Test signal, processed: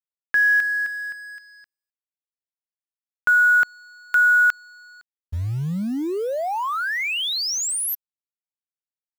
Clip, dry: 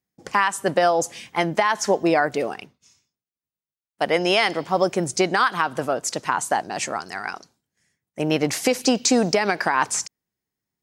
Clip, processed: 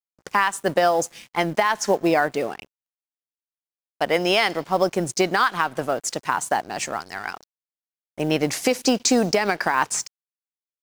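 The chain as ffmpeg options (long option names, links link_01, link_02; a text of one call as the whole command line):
ffmpeg -i in.wav -af "aeval=exprs='sgn(val(0))*max(abs(val(0))-0.00668,0)':channel_layout=same,acrusher=bits=7:mode=log:mix=0:aa=0.000001" out.wav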